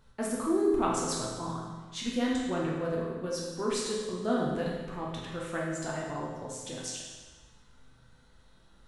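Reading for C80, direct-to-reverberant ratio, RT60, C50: 2.5 dB, -4.5 dB, 1.4 s, 0.5 dB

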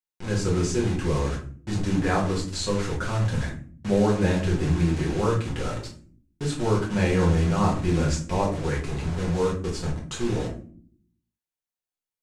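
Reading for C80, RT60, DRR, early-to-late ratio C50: 12.5 dB, no single decay rate, -4.5 dB, 7.0 dB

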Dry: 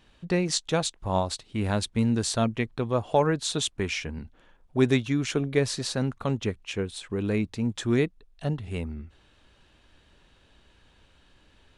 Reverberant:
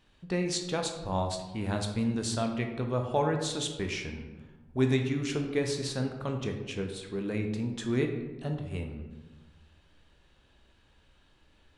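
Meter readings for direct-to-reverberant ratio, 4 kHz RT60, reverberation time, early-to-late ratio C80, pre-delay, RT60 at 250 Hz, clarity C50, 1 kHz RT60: 3.5 dB, 0.65 s, 1.2 s, 8.5 dB, 14 ms, 1.5 s, 6.5 dB, 1.1 s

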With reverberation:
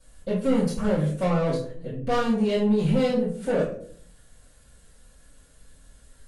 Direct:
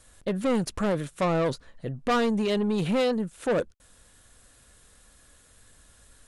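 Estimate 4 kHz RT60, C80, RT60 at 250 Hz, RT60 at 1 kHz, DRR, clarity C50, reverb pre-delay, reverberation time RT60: 0.30 s, 9.5 dB, 0.75 s, 0.45 s, -10.5 dB, 5.0 dB, 3 ms, 0.55 s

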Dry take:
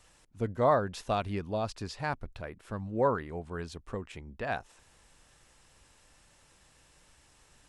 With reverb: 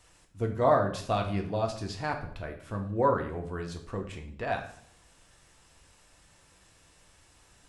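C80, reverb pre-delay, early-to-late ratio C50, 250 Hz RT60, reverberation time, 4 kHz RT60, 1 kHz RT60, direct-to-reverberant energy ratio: 12.5 dB, 3 ms, 9.0 dB, 0.80 s, 0.60 s, 0.50 s, 0.60 s, 2.5 dB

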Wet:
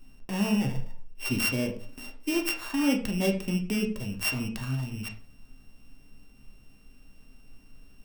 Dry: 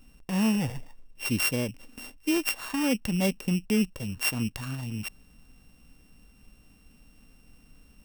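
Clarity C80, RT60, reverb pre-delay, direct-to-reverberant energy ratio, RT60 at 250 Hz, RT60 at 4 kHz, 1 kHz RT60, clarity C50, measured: 14.0 dB, 0.45 s, 3 ms, 2.0 dB, 0.50 s, 0.30 s, 0.45 s, 10.0 dB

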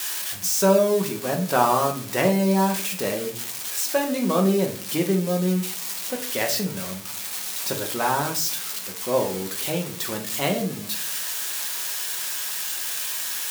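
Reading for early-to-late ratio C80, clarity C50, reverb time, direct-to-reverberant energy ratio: 15.0 dB, 10.0 dB, 0.50 s, 2.0 dB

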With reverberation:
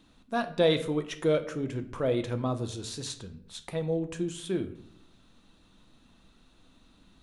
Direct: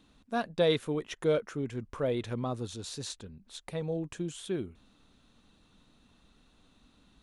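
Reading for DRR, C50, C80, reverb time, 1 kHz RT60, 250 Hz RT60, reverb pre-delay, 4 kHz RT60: 7.5 dB, 13.5 dB, 16.5 dB, 0.65 s, 0.55 s, 0.90 s, 3 ms, 0.45 s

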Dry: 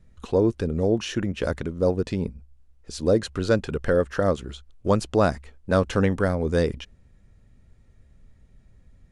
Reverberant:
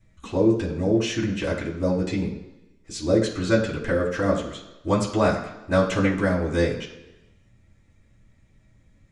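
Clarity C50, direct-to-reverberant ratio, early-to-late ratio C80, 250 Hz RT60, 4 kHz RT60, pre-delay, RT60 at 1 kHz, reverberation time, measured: 8.0 dB, -6.0 dB, 10.5 dB, 1.0 s, 1.0 s, 3 ms, 1.1 s, 1.1 s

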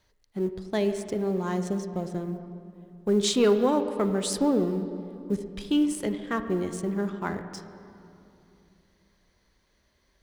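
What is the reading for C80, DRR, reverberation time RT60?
10.0 dB, 8.5 dB, 2.8 s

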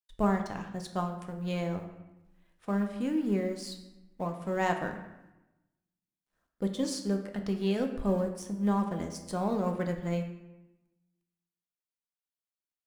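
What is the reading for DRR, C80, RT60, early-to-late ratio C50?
4.0 dB, 10.0 dB, 0.95 s, 8.0 dB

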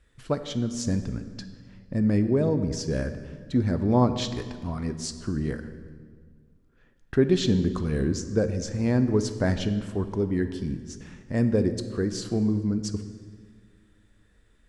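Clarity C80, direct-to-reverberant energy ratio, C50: 12.0 dB, 9.5 dB, 11.0 dB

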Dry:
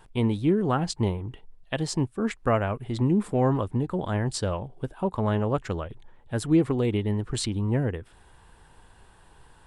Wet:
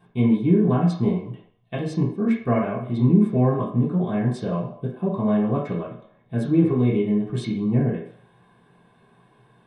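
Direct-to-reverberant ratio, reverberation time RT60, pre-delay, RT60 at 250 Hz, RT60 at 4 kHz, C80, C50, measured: -8.0 dB, 0.65 s, 3 ms, 0.35 s, 0.55 s, 9.0 dB, 4.5 dB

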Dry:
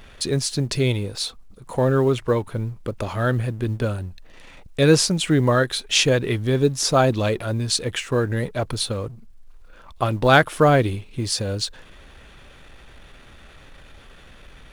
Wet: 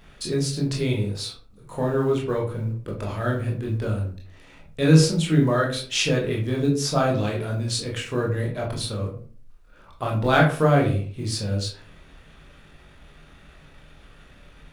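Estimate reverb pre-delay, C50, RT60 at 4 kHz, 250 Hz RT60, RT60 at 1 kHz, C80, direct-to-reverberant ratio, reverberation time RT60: 19 ms, 7.0 dB, 0.25 s, 0.55 s, 0.40 s, 12.0 dB, -2.5 dB, 0.45 s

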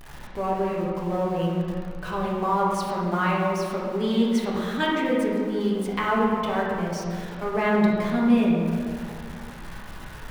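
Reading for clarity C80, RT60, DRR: 1.5 dB, 2.2 s, -5.5 dB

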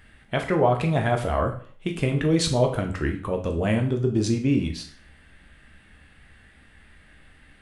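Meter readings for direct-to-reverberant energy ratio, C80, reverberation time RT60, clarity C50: 3.0 dB, 14.0 dB, 0.45 s, 10.0 dB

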